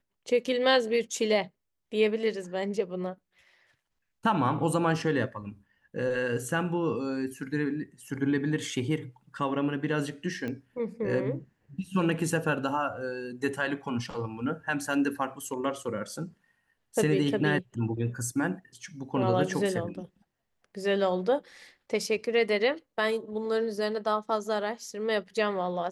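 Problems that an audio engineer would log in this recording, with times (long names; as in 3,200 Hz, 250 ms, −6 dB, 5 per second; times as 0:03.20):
0:10.48: click −23 dBFS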